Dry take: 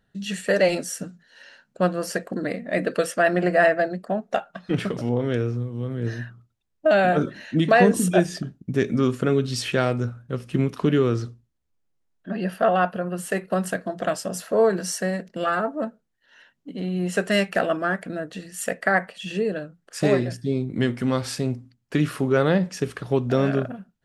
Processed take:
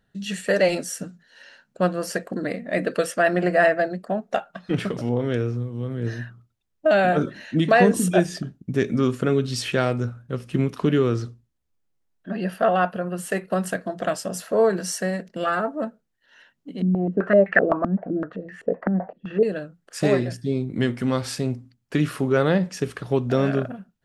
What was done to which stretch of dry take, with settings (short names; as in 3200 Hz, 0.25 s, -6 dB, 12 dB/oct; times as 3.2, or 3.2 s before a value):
16.82–19.43 stepped low-pass 7.8 Hz 230–1800 Hz